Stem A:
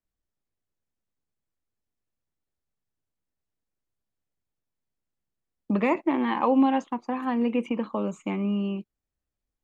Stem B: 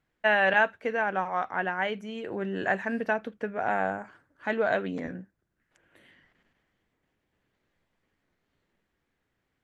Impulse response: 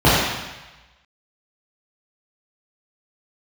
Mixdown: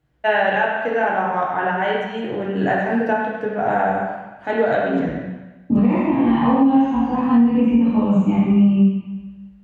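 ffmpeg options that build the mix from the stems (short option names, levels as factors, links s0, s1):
-filter_complex "[0:a]asubboost=boost=7:cutoff=160,flanger=delay=17.5:depth=4:speed=1.3,volume=0.398,asplit=2[s0][s1];[s1]volume=0.398[s2];[1:a]volume=1.19,asplit=2[s3][s4];[s4]volume=0.0794[s5];[2:a]atrim=start_sample=2205[s6];[s2][s5]amix=inputs=2:normalize=0[s7];[s7][s6]afir=irnorm=-1:irlink=0[s8];[s0][s3][s8]amix=inputs=3:normalize=0,alimiter=limit=0.422:level=0:latency=1:release=388"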